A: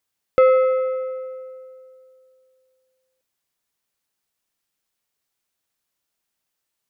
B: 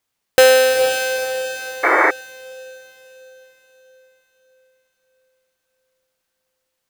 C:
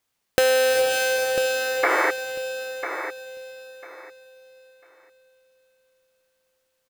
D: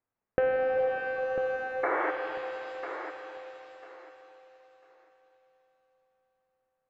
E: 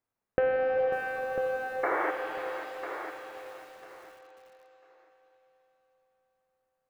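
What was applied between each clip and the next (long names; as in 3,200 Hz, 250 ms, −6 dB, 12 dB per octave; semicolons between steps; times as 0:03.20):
each half-wave held at its own peak; feedback delay with all-pass diffusion 462 ms, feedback 46%, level −8 dB; sound drawn into the spectrogram noise, 0:01.83–0:02.11, 290–2,300 Hz −14 dBFS
downward compressor 6 to 1, threshold −18 dBFS, peak gain reduction 9.5 dB; repeating echo 997 ms, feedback 20%, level −9.5 dB
Bessel low-pass filter 1,300 Hz, order 6; reverb with rising layers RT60 2.9 s, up +7 semitones, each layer −8 dB, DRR 5.5 dB; level −6 dB
feedback echo at a low word length 543 ms, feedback 35%, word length 8 bits, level −11.5 dB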